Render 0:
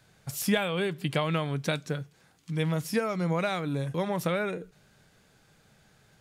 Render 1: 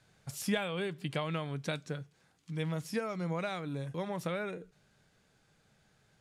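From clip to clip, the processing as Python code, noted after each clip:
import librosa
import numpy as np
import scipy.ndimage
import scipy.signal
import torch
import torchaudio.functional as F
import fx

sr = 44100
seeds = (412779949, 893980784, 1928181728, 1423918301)

y = scipy.signal.sosfilt(scipy.signal.butter(2, 11000.0, 'lowpass', fs=sr, output='sos'), x)
y = fx.rider(y, sr, range_db=4, speed_s=2.0)
y = y * 10.0 ** (-7.0 / 20.0)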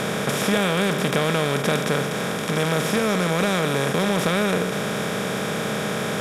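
y = fx.bin_compress(x, sr, power=0.2)
y = fx.fold_sine(y, sr, drive_db=3, ceiling_db=-11.0)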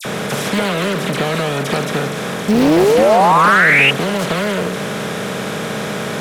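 y = fx.dispersion(x, sr, late='lows', ms=51.0, hz=2400.0)
y = fx.spec_paint(y, sr, seeds[0], shape='rise', start_s=2.48, length_s=1.43, low_hz=200.0, high_hz=2800.0, level_db=-14.0)
y = fx.doppler_dist(y, sr, depth_ms=0.61)
y = y * 10.0 ** (3.0 / 20.0)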